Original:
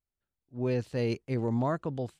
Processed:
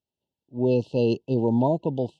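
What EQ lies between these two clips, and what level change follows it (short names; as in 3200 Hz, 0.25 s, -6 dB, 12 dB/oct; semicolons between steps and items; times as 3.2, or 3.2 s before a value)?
BPF 140–3600 Hz; brick-wall FIR band-stop 990–2600 Hz; notch 740 Hz, Q 12; +8.5 dB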